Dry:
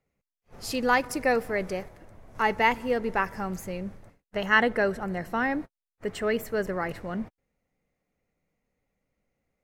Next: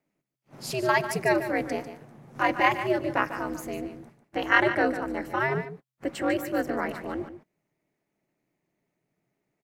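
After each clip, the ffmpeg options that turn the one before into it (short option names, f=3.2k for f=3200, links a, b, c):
-af "aeval=exprs='val(0)*sin(2*PI*130*n/s)':c=same,lowshelf=f=120:t=q:w=1.5:g=-11.5,aecho=1:1:147:0.282,volume=3dB"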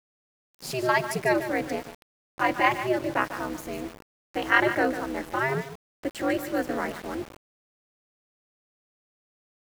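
-af "aeval=exprs='val(0)*gte(abs(val(0)),0.0133)':c=same"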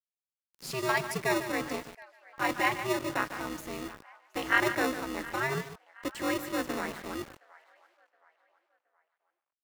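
-filter_complex "[0:a]acrossover=split=700[a][b];[a]acrusher=samples=28:mix=1:aa=0.000001[c];[b]asplit=2[d][e];[e]adelay=720,lowpass=f=3.1k:p=1,volume=-18dB,asplit=2[f][g];[g]adelay=720,lowpass=f=3.1k:p=1,volume=0.42,asplit=2[h][i];[i]adelay=720,lowpass=f=3.1k:p=1,volume=0.42[j];[d][f][h][j]amix=inputs=4:normalize=0[k];[c][k]amix=inputs=2:normalize=0,volume=-4dB"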